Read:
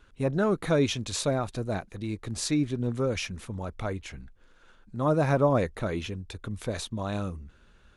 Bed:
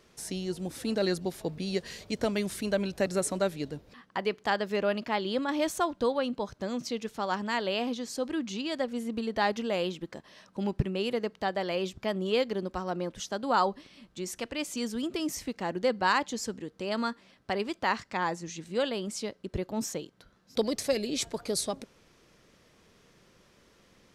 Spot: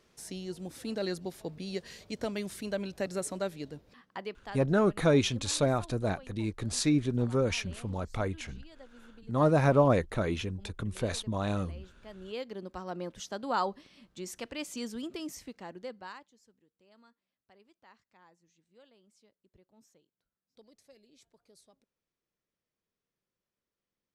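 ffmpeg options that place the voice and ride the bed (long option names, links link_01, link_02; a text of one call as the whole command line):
ffmpeg -i stem1.wav -i stem2.wav -filter_complex "[0:a]adelay=4350,volume=0dB[link_01];[1:a]volume=12dB,afade=type=out:start_time=4:duration=0.65:silence=0.149624,afade=type=in:start_time=11.99:duration=1.07:silence=0.133352,afade=type=out:start_time=14.77:duration=1.53:silence=0.0473151[link_02];[link_01][link_02]amix=inputs=2:normalize=0" out.wav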